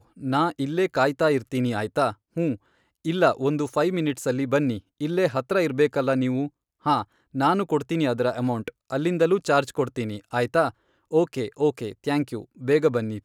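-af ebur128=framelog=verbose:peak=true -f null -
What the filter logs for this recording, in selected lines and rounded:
Integrated loudness:
  I:         -24.5 LUFS
  Threshold: -34.6 LUFS
Loudness range:
  LRA:         1.2 LU
  Threshold: -44.7 LUFS
  LRA low:   -25.3 LUFS
  LRA high:  -24.1 LUFS
True peak:
  Peak:       -7.4 dBFS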